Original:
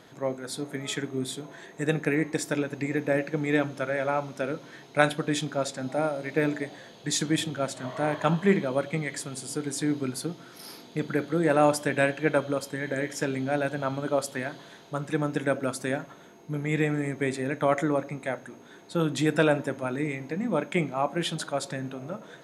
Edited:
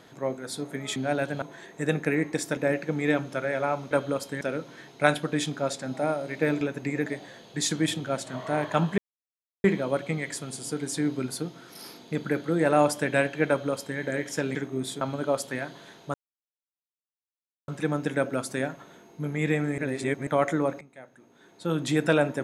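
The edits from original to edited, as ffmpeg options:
-filter_complex "[0:a]asplit=15[a][b][c][d][e][f][g][h][i][j][k][l][m][n][o];[a]atrim=end=0.962[p];[b]atrim=start=13.388:end=13.852[q];[c]atrim=start=1.418:end=2.572[r];[d]atrim=start=3.018:end=4.362[s];[e]atrim=start=12.318:end=12.822[t];[f]atrim=start=4.358:end=6.562[u];[g]atrim=start=2.568:end=3.022[v];[h]atrim=start=6.558:end=8.48,asetpts=PTS-STARTPTS,afade=t=out:st=1.918:d=0.004:c=hsin,apad=pad_dur=0.66[w];[i]atrim=start=8.48:end=13.392,asetpts=PTS-STARTPTS,afade=t=in:d=0.004:c=hsin[x];[j]atrim=start=0.958:end=1.422[y];[k]atrim=start=13.848:end=14.98,asetpts=PTS-STARTPTS,afade=t=out:st=1.128:d=0.004:c=hsin,apad=pad_dur=1.54[z];[l]atrim=start=14.98:end=17.082,asetpts=PTS-STARTPTS,afade=t=in:d=0.004:c=hsin[aa];[m]atrim=start=17.078:end=17.572,asetpts=PTS-STARTPTS,areverse[ab];[n]atrim=start=17.568:end=18.11,asetpts=PTS-STARTPTS,afade=t=out:st=0.538:d=0.004:c=hsin:silence=0.133352[ac];[o]atrim=start=18.11,asetpts=PTS-STARTPTS,afade=t=in:d=1.01:c=qua:silence=0.133352[ad];[p][q]acrossfade=d=0.004:c1=hsin:c2=hsin[ae];[ae][r]acrossfade=d=0.004:c1=hsin:c2=hsin[af];[af][s]acrossfade=d=0.004:c1=hsin:c2=hsin[ag];[ag][t]acrossfade=d=0.004:c1=hsin:c2=hsin[ah];[ah][u]acrossfade=d=0.004:c1=hsin:c2=hsin[ai];[ai][v]acrossfade=d=0.004:c1=hsin:c2=hsin[aj];[w][x]concat=n=2:v=0:a=1[ak];[aj][ak]acrossfade=d=0.004:c1=hsin:c2=hsin[al];[al][y]acrossfade=d=0.004:c1=hsin:c2=hsin[am];[z][aa]concat=n=2:v=0:a=1[an];[am][an]acrossfade=d=0.004:c1=hsin:c2=hsin[ao];[ao][ab]acrossfade=d=0.004:c1=hsin:c2=hsin[ap];[ac][ad]concat=n=2:v=0:a=1[aq];[ap][aq]acrossfade=d=0.004:c1=hsin:c2=hsin"

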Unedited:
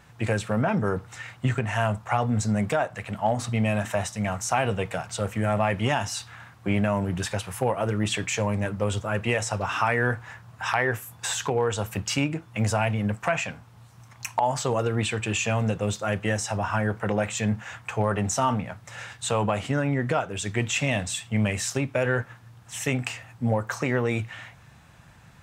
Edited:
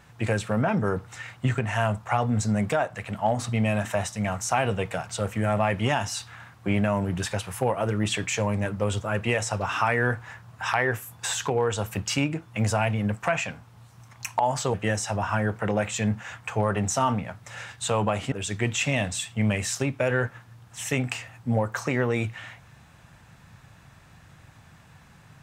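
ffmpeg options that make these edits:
-filter_complex "[0:a]asplit=3[a][b][c];[a]atrim=end=14.742[d];[b]atrim=start=16.148:end=19.732[e];[c]atrim=start=20.268[f];[d][e]acrossfade=d=0.004:c1=hsin:c2=hsin[g];[g][f]acrossfade=d=0.004:c1=hsin:c2=hsin"

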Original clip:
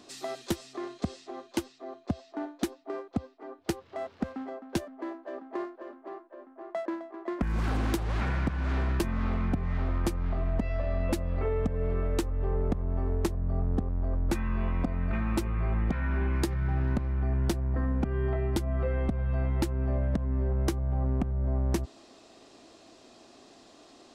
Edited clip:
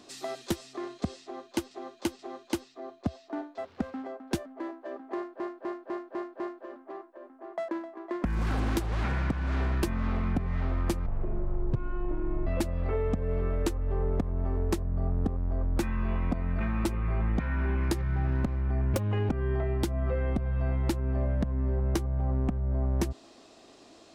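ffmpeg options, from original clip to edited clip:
-filter_complex "[0:a]asplit=13[a][b][c][d][e][f][g][h][i][j][k][l][m];[a]atrim=end=1.712[n];[b]atrim=start=1.228:end=1.712[o];[c]atrim=start=1.228:end=2.622[p];[d]atrim=start=3.998:end=5.822[q];[e]atrim=start=5.568:end=5.822[r];[f]atrim=start=5.568:end=5.822[s];[g]atrim=start=5.568:end=5.822[t];[h]atrim=start=5.568:end=5.822[u];[i]atrim=start=5.568:end=10.234[v];[j]atrim=start=10.23:end=10.99,asetpts=PTS-STARTPTS,asetrate=23814,aresample=44100[w];[k]atrim=start=10.986:end=17.464[x];[l]atrim=start=17.46:end=18.02,asetpts=PTS-STARTPTS,asetrate=69678,aresample=44100,atrim=end_sample=15630,asetpts=PTS-STARTPTS[y];[m]atrim=start=18.016[z];[n][o]acrossfade=d=0.004:c1=hsin:c2=hsin[aa];[aa][p]acrossfade=d=0.004:c1=hsin:c2=hsin[ab];[ab][q]acrossfade=d=0.004:c1=hsin:c2=hsin[ac];[ac][r]acrossfade=d=0.004:c1=hsin:c2=hsin[ad];[ad][s]acrossfade=d=0.004:c1=hsin:c2=hsin[ae];[ae][t]acrossfade=d=0.004:c1=hsin:c2=hsin[af];[af][u]acrossfade=d=0.004:c1=hsin:c2=hsin[ag];[ag][v]acrossfade=d=0.004:c1=hsin:c2=hsin[ah];[ah][w]acrossfade=d=0.004:c1=hsin:c2=hsin[ai];[ai][x]acrossfade=d=0.004:c1=hsin:c2=hsin[aj];[aj][y]acrossfade=d=0.004:c1=hsin:c2=hsin[ak];[ak][z]acrossfade=d=0.004:c1=hsin:c2=hsin"

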